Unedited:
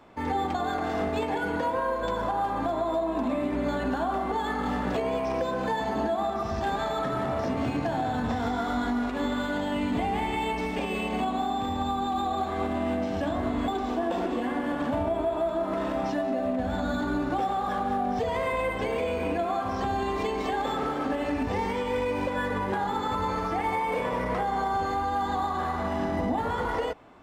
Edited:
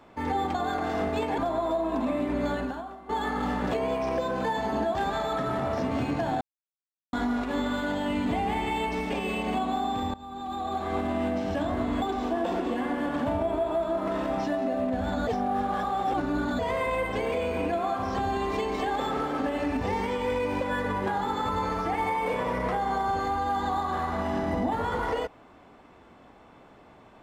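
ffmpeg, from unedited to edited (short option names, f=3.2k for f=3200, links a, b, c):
-filter_complex "[0:a]asplit=9[a][b][c][d][e][f][g][h][i];[a]atrim=end=1.382[j];[b]atrim=start=2.608:end=4.32,asetpts=PTS-STARTPTS,afade=t=out:st=1.162:d=0.55:c=qua:silence=0.125893[k];[c]atrim=start=4.32:end=6.182,asetpts=PTS-STARTPTS,afade=t=in:d=0.004:c=hsin:silence=0.125893[l];[d]atrim=start=6.608:end=8.07,asetpts=PTS-STARTPTS,afade=t=out:st=1.458:d=0.004:c=hsin[m];[e]atrim=start=8.07:end=8.79,asetpts=PTS-STARTPTS,volume=0[n];[f]atrim=start=8.79:end=11.8,asetpts=PTS-STARTPTS,afade=t=in:d=0.004:c=hsin,afade=t=out:st=3.006:d=0.004:c=hsin:silence=0.0891251[o];[g]atrim=start=11.8:end=16.932,asetpts=PTS-STARTPTS,afade=t=in:d=0.78:silence=0.0891251[p];[h]atrim=start=16.928:end=18.252,asetpts=PTS-STARTPTS,areverse[q];[i]atrim=start=18.248[r];[k][l]concat=n=2:v=0:a=1[s];[j][s]acrossfade=d=0.004:c1=hsin:c2=hsin[t];[m][n][o][p]concat=n=4:v=0:a=1[u];[t][u]acrossfade=d=0.004:c1=hsin:c2=hsin[v];[v][q]acrossfade=d=0.004:c1=hsin:c2=hsin[w];[w][r]acrossfade=d=0.004:c1=hsin:c2=hsin"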